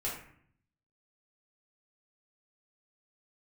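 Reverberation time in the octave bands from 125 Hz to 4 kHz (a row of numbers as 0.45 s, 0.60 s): 1.0 s, 0.85 s, 0.60 s, 0.60 s, 0.60 s, 0.40 s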